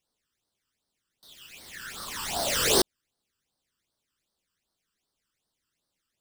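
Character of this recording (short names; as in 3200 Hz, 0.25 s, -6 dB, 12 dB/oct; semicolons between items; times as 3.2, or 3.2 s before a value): aliases and images of a low sample rate 17000 Hz, jitter 0%; phasing stages 12, 2.6 Hz, lowest notch 670–2500 Hz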